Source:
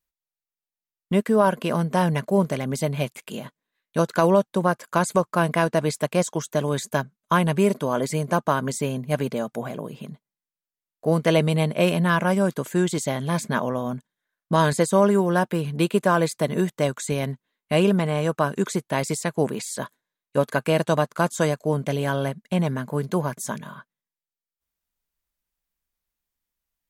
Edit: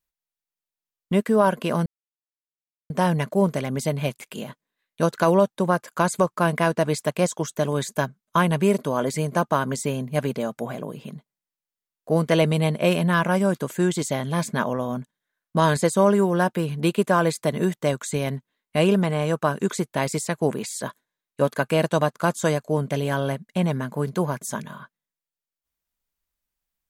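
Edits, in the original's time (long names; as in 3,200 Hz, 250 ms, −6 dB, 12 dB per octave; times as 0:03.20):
0:01.86: splice in silence 1.04 s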